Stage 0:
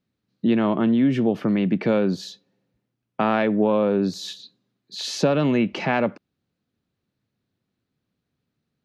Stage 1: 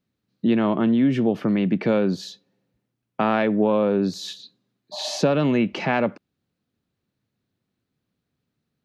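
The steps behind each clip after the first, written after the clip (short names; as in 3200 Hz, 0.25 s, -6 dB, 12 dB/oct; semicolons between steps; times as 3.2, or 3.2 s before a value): spectral repair 4.95–5.17, 590–1200 Hz after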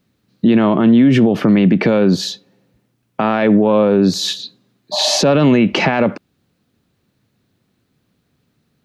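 maximiser +17.5 dB; gain -3.5 dB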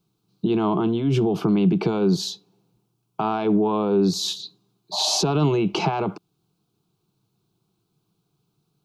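fixed phaser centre 370 Hz, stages 8; gain -4 dB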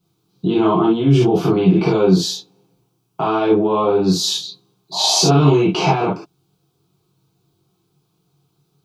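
non-linear reverb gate 90 ms flat, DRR -7.5 dB; gain -1 dB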